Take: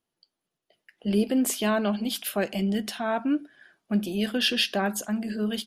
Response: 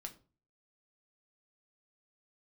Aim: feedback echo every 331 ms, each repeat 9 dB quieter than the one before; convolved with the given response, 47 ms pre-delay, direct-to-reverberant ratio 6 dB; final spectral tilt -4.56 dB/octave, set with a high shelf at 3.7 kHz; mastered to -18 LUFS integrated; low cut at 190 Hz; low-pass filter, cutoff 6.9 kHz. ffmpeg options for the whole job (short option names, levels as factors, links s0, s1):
-filter_complex "[0:a]highpass=190,lowpass=6900,highshelf=f=3700:g=-4,aecho=1:1:331|662|993|1324:0.355|0.124|0.0435|0.0152,asplit=2[s0][s1];[1:a]atrim=start_sample=2205,adelay=47[s2];[s1][s2]afir=irnorm=-1:irlink=0,volume=0.794[s3];[s0][s3]amix=inputs=2:normalize=0,volume=2.82"